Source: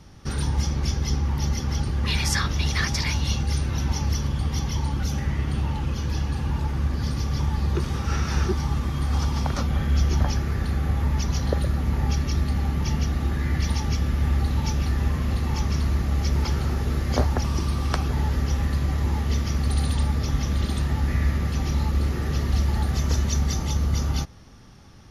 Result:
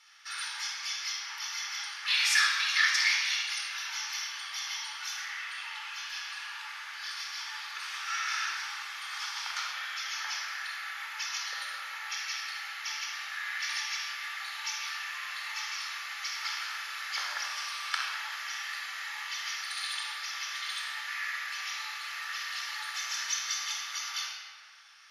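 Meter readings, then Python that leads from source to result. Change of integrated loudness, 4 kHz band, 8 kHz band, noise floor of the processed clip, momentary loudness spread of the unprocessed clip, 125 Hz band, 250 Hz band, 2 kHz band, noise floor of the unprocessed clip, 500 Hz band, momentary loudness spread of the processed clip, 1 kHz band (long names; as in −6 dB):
−7.5 dB, +2.5 dB, −1.0 dB, −42 dBFS, 3 LU, below −40 dB, below −40 dB, +4.5 dB, −31 dBFS, below −25 dB, 9 LU, −5.0 dB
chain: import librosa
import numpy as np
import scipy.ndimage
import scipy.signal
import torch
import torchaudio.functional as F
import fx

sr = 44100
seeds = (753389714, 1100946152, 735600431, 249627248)

y = scipy.signal.sosfilt(scipy.signal.butter(4, 1500.0, 'highpass', fs=sr, output='sos'), x)
y = fx.high_shelf(y, sr, hz=6300.0, db=-9.5)
y = fx.room_shoebox(y, sr, seeds[0], volume_m3=2900.0, walls='mixed', distance_m=4.2)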